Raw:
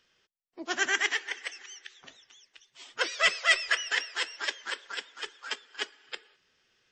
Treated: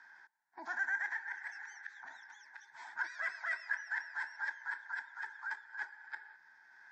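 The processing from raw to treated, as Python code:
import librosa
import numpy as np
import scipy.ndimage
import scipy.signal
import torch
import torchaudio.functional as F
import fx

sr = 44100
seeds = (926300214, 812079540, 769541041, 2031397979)

y = fx.double_bandpass(x, sr, hz=1200.0, octaves=0.82)
y = fx.transient(y, sr, attack_db=-4, sustain_db=5)
y = fx.fixed_phaser(y, sr, hz=1200.0, stages=4)
y = fx.band_squash(y, sr, depth_pct=70)
y = y * librosa.db_to_amplitude(3.0)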